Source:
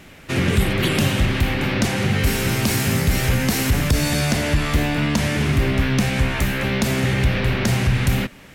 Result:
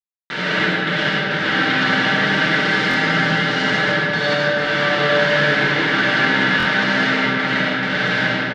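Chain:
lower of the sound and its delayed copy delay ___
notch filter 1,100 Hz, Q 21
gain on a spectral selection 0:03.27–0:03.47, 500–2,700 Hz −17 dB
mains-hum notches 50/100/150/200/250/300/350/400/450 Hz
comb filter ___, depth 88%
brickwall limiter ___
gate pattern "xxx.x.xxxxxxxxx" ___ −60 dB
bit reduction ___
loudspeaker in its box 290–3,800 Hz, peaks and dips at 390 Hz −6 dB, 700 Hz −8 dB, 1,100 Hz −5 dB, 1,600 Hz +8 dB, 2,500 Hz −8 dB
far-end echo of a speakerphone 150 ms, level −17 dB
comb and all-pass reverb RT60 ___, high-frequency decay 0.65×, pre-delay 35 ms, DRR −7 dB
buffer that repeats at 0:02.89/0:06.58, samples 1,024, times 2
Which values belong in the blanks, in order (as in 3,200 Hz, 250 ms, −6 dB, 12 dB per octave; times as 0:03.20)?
5.2 ms, 6.6 ms, −9.5 dBFS, 69 BPM, 4 bits, 2.9 s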